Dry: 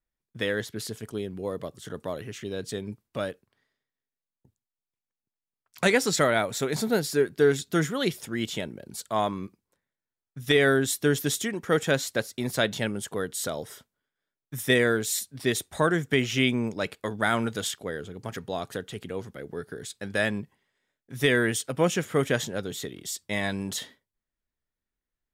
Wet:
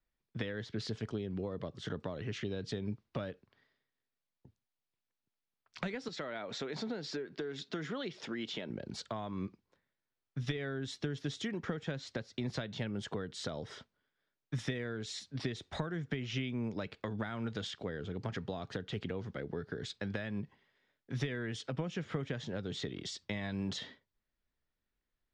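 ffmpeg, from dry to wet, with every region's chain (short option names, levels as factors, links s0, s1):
-filter_complex "[0:a]asettb=1/sr,asplit=3[s0][s1][s2];[s0]atrim=end=6.084[s3];[s1]atrim=start=6.08:end=8.7,asetpts=PTS-STARTPTS,afade=t=in:d=0.004:c=qsin,afade=t=out:st=2.616:d=0.004:c=qsin,highpass=240,lowpass=7100,acompressor=threshold=0.0178:ratio=2:attack=3.2:release=140:knee=1:detection=peak[s4];[s2]atrim=start=8.696[s5];[s3][s4]acrossfade=d=0.004:c1=hsin:c2=qsin[s6];[s6][s5]acrossfade=d=0.004:c1=qsin:c2=hsin,acompressor=threshold=0.0282:ratio=6,lowpass=f=5100:w=0.5412,lowpass=f=5100:w=1.3066,acrossover=split=210[s7][s8];[s8]acompressor=threshold=0.00891:ratio=4[s9];[s7][s9]amix=inputs=2:normalize=0,volume=1.26"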